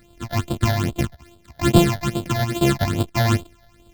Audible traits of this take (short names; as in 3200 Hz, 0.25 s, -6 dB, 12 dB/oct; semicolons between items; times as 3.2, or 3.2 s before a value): a buzz of ramps at a fixed pitch in blocks of 128 samples; phasing stages 8, 2.4 Hz, lowest notch 330–1900 Hz